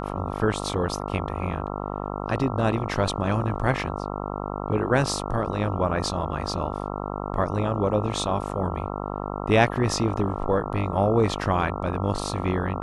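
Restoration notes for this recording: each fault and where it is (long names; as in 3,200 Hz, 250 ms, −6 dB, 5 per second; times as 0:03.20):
mains buzz 50 Hz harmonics 27 −31 dBFS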